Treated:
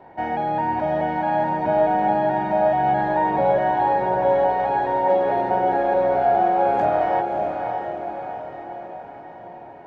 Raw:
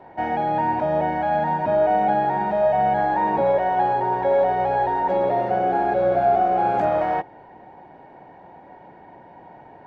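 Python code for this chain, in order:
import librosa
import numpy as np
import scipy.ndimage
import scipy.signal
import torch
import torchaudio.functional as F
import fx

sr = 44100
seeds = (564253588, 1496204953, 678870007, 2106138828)

y = fx.echo_diffused(x, sr, ms=605, feedback_pct=55, wet_db=-5)
y = y * librosa.db_to_amplitude(-1.0)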